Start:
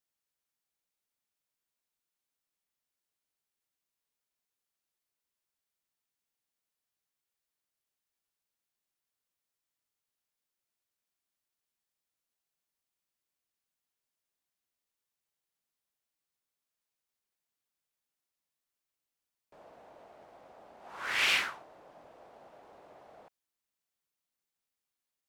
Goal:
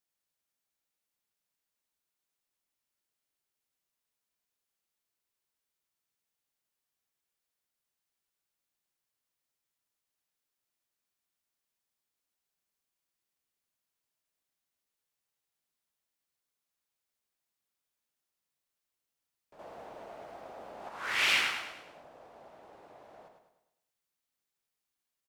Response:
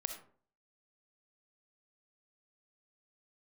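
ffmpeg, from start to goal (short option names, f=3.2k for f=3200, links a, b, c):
-filter_complex "[0:a]asettb=1/sr,asplit=3[a][b][c];[a]atrim=end=19.594[d];[b]atrim=start=19.59:end=20.89,asetpts=PTS-STARTPTS,afade=t=in:d=0.004:c=qsin,afade=t=out:st=1.296:d=0.004:c=qsin,acontrast=84[e];[c]atrim=start=20.886[f];[d][e]acrossfade=d=0.004:c1=hsin:c2=qsin[g];[g][f]acrossfade=d=0.004:c1=qsin:c2=hsin,asplit=2[h][i];[i]aecho=0:1:104|208|312|416|520|624:0.501|0.231|0.106|0.0488|0.0224|0.0103[j];[h][j]amix=inputs=2:normalize=0"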